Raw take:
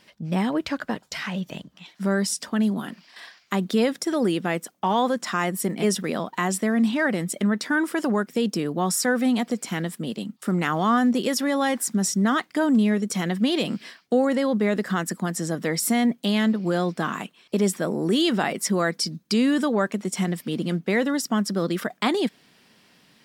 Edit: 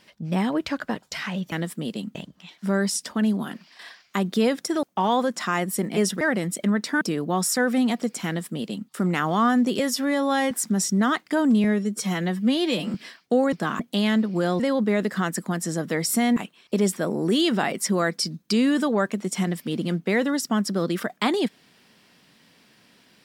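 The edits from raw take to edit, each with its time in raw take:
4.20–4.69 s: delete
6.07–6.98 s: delete
7.78–8.49 s: delete
9.74–10.37 s: copy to 1.52 s
11.27–11.75 s: stretch 1.5×
12.88–13.75 s: stretch 1.5×
14.33–16.10 s: swap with 16.90–17.17 s

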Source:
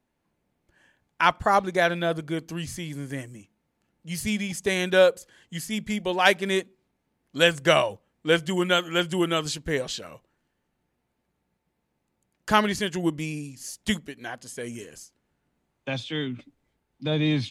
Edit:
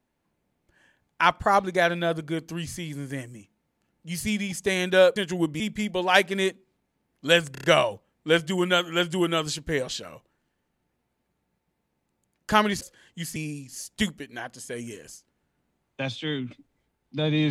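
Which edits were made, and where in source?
5.16–5.71 s: swap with 12.80–13.24 s
7.63 s: stutter 0.03 s, 5 plays

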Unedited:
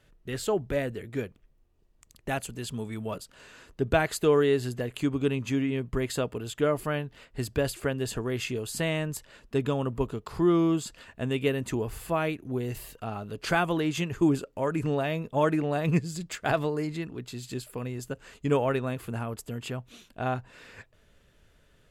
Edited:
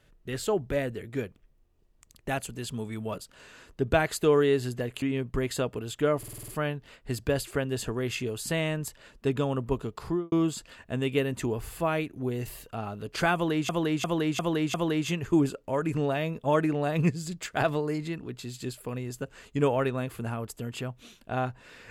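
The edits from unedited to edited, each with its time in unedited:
5.02–5.61 s: delete
6.77 s: stutter 0.05 s, 7 plays
10.31–10.61 s: studio fade out
13.63–13.98 s: loop, 5 plays

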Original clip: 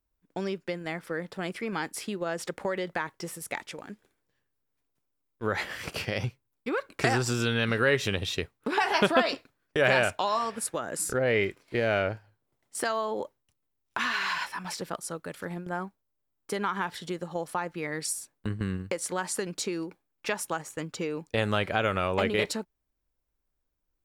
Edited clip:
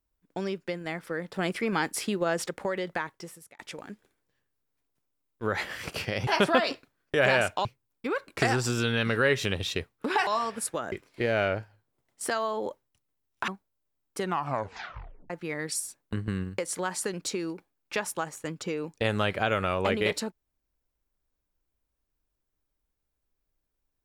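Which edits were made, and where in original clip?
1.34–2.46 s: gain +4.5 dB
2.97–3.59 s: fade out
8.89–10.27 s: move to 6.27 s
10.92–11.46 s: delete
14.02–15.81 s: delete
16.51 s: tape stop 1.12 s

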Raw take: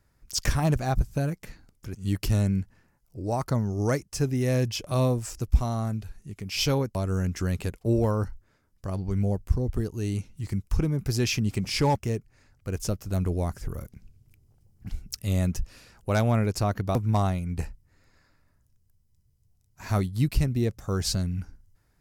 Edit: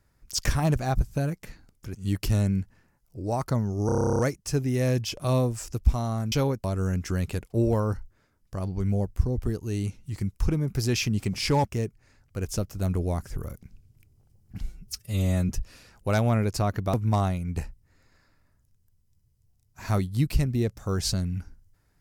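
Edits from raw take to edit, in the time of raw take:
3.86 s: stutter 0.03 s, 12 plays
5.99–6.63 s: delete
14.92–15.51 s: stretch 1.5×

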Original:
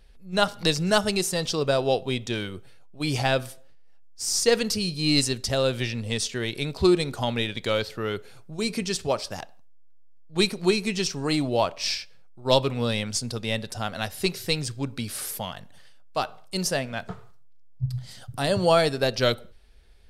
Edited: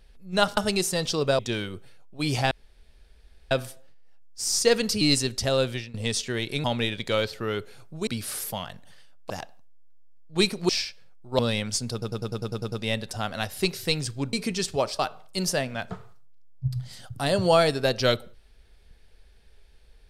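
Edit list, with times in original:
0.57–0.97 s: delete
1.79–2.20 s: delete
3.32 s: insert room tone 1.00 s
4.82–5.07 s: delete
5.70–6.00 s: fade out, to -20 dB
6.70–7.21 s: delete
8.64–9.30 s: swap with 14.94–16.17 s
10.69–11.82 s: delete
12.52–12.80 s: delete
13.33 s: stutter 0.10 s, 9 plays

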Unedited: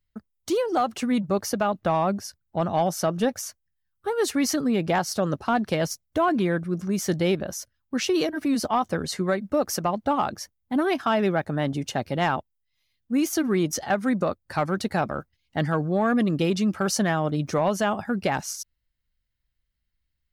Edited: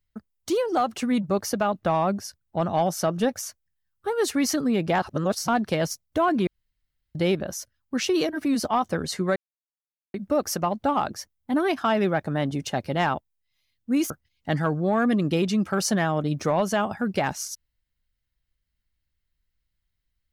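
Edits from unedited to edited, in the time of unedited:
5.02–5.48 s: reverse
6.47–7.15 s: room tone
9.36 s: insert silence 0.78 s
13.32–15.18 s: delete

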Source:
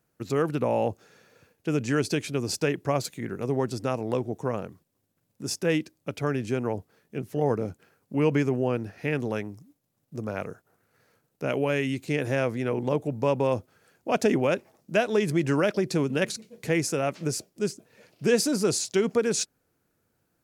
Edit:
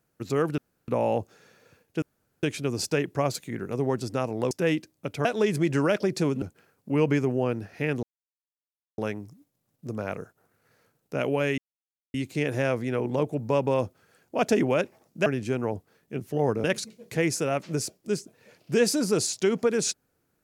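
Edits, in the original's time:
0.58 s: insert room tone 0.30 s
1.72–2.13 s: room tone
4.21–5.54 s: delete
6.28–7.66 s: swap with 14.99–16.16 s
9.27 s: insert silence 0.95 s
11.87 s: insert silence 0.56 s

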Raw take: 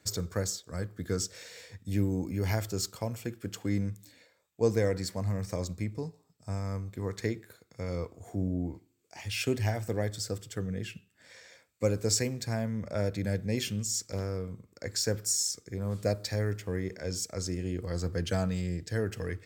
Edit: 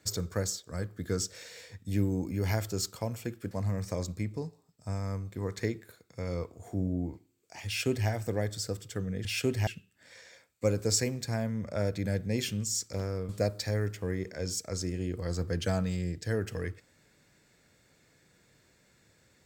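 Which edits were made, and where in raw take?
3.51–5.12 s: delete
9.28–9.70 s: copy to 10.86 s
14.48–15.94 s: delete

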